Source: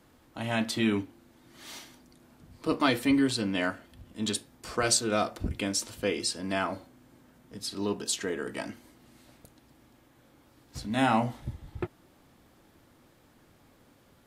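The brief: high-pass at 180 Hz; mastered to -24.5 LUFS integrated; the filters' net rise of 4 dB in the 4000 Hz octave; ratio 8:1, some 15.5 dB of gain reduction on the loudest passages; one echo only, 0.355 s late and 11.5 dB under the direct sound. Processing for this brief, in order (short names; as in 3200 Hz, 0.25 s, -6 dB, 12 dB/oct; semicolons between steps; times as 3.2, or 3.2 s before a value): HPF 180 Hz; bell 4000 Hz +5 dB; compressor 8:1, threshold -35 dBFS; echo 0.355 s -11.5 dB; gain +15.5 dB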